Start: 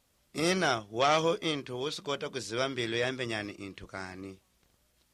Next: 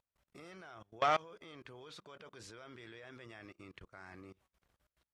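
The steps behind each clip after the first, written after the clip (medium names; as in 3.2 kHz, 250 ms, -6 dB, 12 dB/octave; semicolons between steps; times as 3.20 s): FFT filter 110 Hz 0 dB, 230 Hz -4 dB, 1.4 kHz +4 dB, 5 kHz -7 dB; level held to a coarse grid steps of 24 dB; trim -4.5 dB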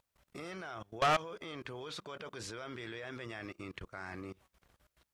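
saturation -32.5 dBFS, distortion -6 dB; trim +8.5 dB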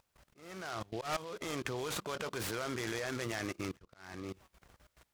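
slow attack 523 ms; delay time shaken by noise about 3.2 kHz, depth 0.046 ms; trim +6.5 dB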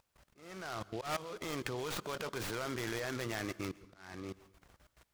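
tracing distortion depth 0.16 ms; on a send at -20 dB: reverberation RT60 0.65 s, pre-delay 118 ms; on the sum: trim -1 dB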